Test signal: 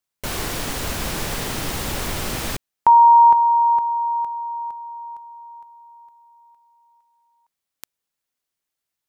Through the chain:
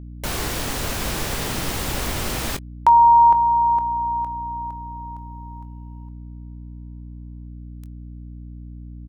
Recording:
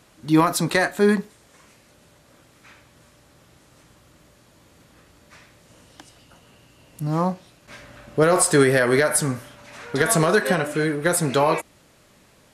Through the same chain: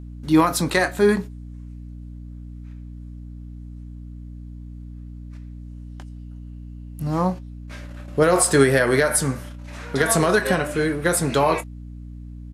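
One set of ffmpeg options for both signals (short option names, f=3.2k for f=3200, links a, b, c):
-filter_complex "[0:a]agate=range=-16dB:threshold=-47dB:ratio=16:release=59:detection=peak,asplit=2[a][b];[b]adelay=22,volume=-13dB[c];[a][c]amix=inputs=2:normalize=0,aeval=exprs='val(0)+0.0178*(sin(2*PI*60*n/s)+sin(2*PI*2*60*n/s)/2+sin(2*PI*3*60*n/s)/3+sin(2*PI*4*60*n/s)/4+sin(2*PI*5*60*n/s)/5)':c=same"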